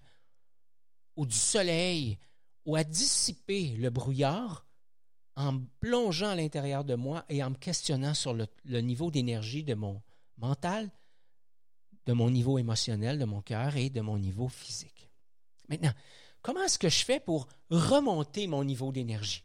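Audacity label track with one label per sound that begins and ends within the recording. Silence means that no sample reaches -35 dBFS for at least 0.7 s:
1.180000	4.540000	sound
5.370000	10.870000	sound
12.070000	14.810000	sound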